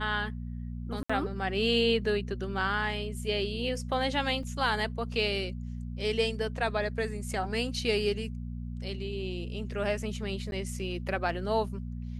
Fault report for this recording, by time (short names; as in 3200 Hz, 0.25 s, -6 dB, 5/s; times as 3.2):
hum 60 Hz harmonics 4 -37 dBFS
1.03–1.09 gap 65 ms
4.43 gap 3 ms
10.51–10.52 gap 11 ms